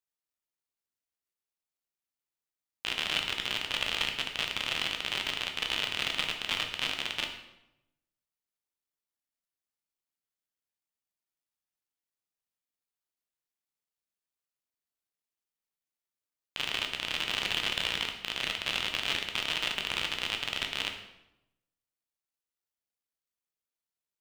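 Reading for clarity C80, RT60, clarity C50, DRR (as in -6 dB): 9.5 dB, 0.90 s, 7.5 dB, 3.0 dB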